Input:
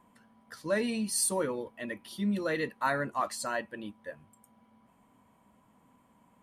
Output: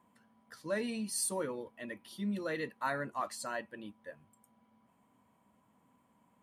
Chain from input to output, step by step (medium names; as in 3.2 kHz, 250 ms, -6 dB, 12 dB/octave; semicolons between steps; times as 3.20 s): high-pass 67 Hz; trim -5.5 dB